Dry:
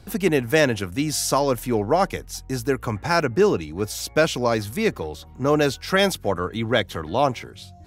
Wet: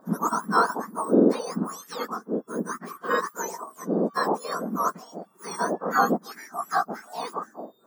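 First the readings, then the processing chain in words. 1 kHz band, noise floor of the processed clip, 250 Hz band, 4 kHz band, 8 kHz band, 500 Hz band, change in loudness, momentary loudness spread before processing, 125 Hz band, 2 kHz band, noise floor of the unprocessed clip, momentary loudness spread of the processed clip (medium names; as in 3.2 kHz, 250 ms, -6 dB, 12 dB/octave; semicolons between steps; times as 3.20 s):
+0.5 dB, -58 dBFS, -2.5 dB, -13.0 dB, -8.0 dB, -7.0 dB, -4.5 dB, 8 LU, -11.0 dB, -6.0 dB, -45 dBFS, 13 LU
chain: spectrum inverted on a logarithmic axis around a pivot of 1.6 kHz; resonant high shelf 1.8 kHz -13.5 dB, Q 3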